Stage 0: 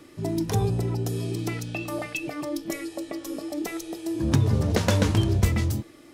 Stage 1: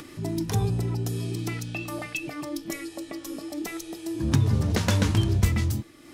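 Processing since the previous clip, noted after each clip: bell 530 Hz -6 dB 1.2 oct; upward compressor, threshold -36 dBFS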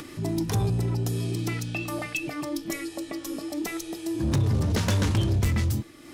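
soft clip -20.5 dBFS, distortion -12 dB; gain +2.5 dB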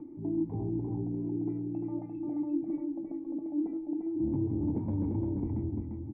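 vocal tract filter u; echo 0.347 s -4 dB; gain +1.5 dB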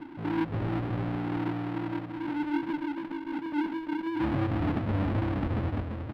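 half-waves squared off; air absorption 450 m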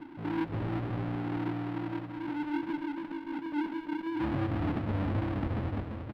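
echo 0.197 s -13.5 dB; gain -3 dB

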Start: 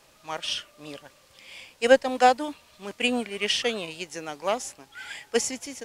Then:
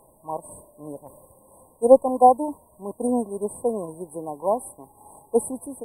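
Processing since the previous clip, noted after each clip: FFT band-reject 1100–8000 Hz; reverse; upward compressor, threshold -44 dBFS; reverse; gain +4.5 dB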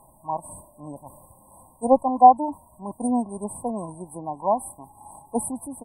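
comb 1.1 ms, depth 70%; spectral gate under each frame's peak -30 dB strong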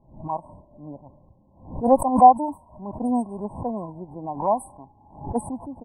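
low-pass opened by the level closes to 340 Hz, open at -18.5 dBFS; backwards sustainer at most 120 dB/s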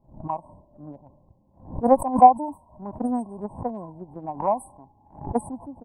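transient shaper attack +8 dB, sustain +2 dB; gain -5 dB

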